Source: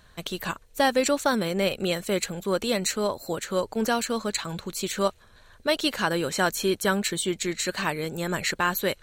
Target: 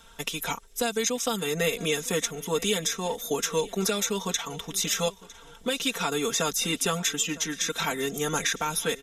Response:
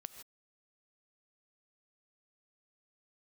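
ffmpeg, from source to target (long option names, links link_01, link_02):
-filter_complex "[0:a]bass=frequency=250:gain=-4,treble=frequency=4000:gain=7,bandreject=frequency=5400:width=14,aecho=1:1:3.8:1,acrossover=split=340|3200|8000[link_01][link_02][link_03][link_04];[link_01]acompressor=threshold=-31dB:ratio=4[link_05];[link_02]acompressor=threshold=-24dB:ratio=4[link_06];[link_03]acompressor=threshold=-25dB:ratio=4[link_07];[link_04]acompressor=threshold=-30dB:ratio=4[link_08];[link_05][link_06][link_07][link_08]amix=inputs=4:normalize=0,alimiter=limit=-14.5dB:level=0:latency=1:release=467,asetrate=38170,aresample=44100,atempo=1.15535,asplit=2[link_09][link_10];[link_10]aecho=0:1:956|1912|2868:0.1|0.032|0.0102[link_11];[link_09][link_11]amix=inputs=2:normalize=0"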